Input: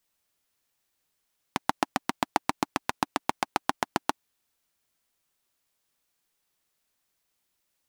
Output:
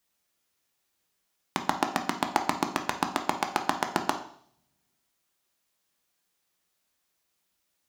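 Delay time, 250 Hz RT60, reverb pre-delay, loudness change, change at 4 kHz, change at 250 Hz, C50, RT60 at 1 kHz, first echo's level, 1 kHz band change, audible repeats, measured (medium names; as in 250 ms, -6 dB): no echo, 0.65 s, 3 ms, +1.0 dB, +1.0 dB, +1.5 dB, 10.0 dB, 0.55 s, no echo, +1.0 dB, no echo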